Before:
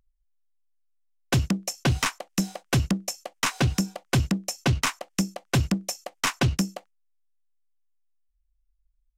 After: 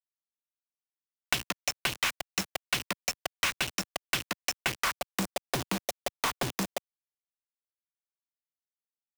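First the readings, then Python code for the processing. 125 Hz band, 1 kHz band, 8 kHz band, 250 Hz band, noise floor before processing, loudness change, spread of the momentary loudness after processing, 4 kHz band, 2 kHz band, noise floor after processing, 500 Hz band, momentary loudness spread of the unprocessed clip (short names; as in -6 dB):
-17.5 dB, -2.5 dB, -3.5 dB, -12.5 dB, -71 dBFS, -5.0 dB, 5 LU, -1.0 dB, -1.0 dB, under -85 dBFS, -4.0 dB, 5 LU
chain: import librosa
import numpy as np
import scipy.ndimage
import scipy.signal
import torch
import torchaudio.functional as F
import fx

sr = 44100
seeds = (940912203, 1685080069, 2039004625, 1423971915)

y = fx.filter_sweep_bandpass(x, sr, from_hz=2800.0, to_hz=670.0, start_s=4.53, end_s=5.22, q=1.2)
y = fx.quant_companded(y, sr, bits=2)
y = fx.band_squash(y, sr, depth_pct=100)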